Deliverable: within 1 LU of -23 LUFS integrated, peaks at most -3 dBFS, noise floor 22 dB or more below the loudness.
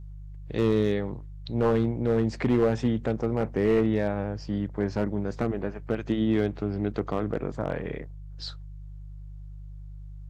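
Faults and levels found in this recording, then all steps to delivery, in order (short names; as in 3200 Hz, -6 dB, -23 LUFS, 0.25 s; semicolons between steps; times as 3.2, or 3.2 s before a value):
clipped 0.7%; flat tops at -16.0 dBFS; hum 50 Hz; harmonics up to 150 Hz; hum level -38 dBFS; loudness -27.5 LUFS; peak -16.0 dBFS; loudness target -23.0 LUFS
-> clip repair -16 dBFS; de-hum 50 Hz, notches 3; gain +4.5 dB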